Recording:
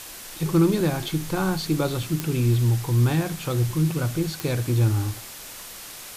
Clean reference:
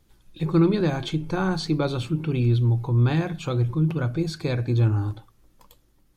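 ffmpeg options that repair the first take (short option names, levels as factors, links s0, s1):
-af "adeclick=t=4,afwtdn=0.013"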